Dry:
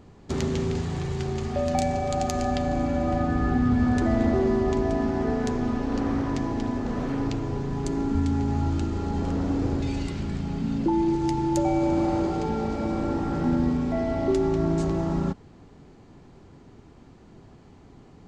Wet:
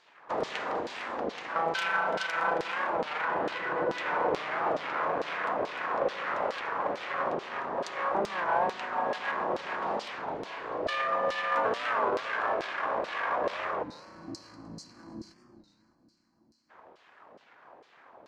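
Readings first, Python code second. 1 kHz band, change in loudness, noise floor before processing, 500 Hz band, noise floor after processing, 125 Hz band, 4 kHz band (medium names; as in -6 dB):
+2.0 dB, -5.0 dB, -51 dBFS, -4.5 dB, -65 dBFS, -24.5 dB, +1.5 dB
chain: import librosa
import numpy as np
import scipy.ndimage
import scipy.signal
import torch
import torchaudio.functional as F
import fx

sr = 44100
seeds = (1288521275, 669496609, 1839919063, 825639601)

p1 = fx.small_body(x, sr, hz=(830.0, 1600.0), ring_ms=30, db=13)
p2 = fx.rider(p1, sr, range_db=4, speed_s=2.0)
p3 = p1 + (p2 * librosa.db_to_amplitude(2.0))
p4 = np.abs(p3)
p5 = fx.high_shelf(p4, sr, hz=7700.0, db=-9.0)
p6 = fx.echo_feedback(p5, sr, ms=303, feedback_pct=50, wet_db=-12.0)
p7 = fx.filter_lfo_bandpass(p6, sr, shape='saw_down', hz=2.3, low_hz=450.0, high_hz=4700.0, q=1.5)
p8 = fx.spec_box(p7, sr, start_s=13.84, length_s=2.86, low_hz=360.0, high_hz=4000.0, gain_db=-26)
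p9 = fx.low_shelf(p8, sr, hz=210.0, db=-5.0)
p10 = fx.rev_spring(p9, sr, rt60_s=3.2, pass_ms=(31,), chirp_ms=70, drr_db=17.0)
p11 = fx.record_warp(p10, sr, rpm=33.33, depth_cents=160.0)
y = p11 * librosa.db_to_amplitude(-3.0)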